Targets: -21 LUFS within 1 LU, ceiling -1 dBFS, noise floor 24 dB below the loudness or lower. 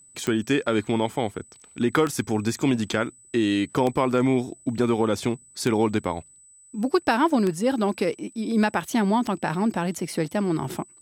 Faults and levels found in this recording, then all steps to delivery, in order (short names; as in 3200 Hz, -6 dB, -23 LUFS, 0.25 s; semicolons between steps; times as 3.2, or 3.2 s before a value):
clicks 6; steady tone 8000 Hz; tone level -50 dBFS; loudness -24.5 LUFS; peak -8.0 dBFS; loudness target -21.0 LUFS
-> de-click; notch 8000 Hz, Q 30; gain +3.5 dB